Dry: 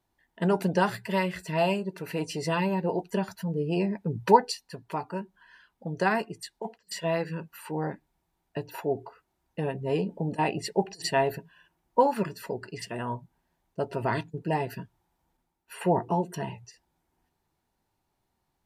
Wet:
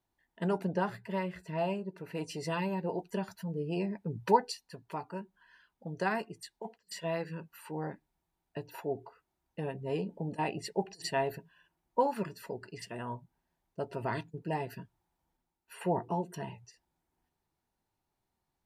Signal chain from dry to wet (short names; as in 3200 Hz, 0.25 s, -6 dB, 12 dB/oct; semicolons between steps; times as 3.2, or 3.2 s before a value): 0.58–2.15 high shelf 2600 Hz -11 dB; gain -6.5 dB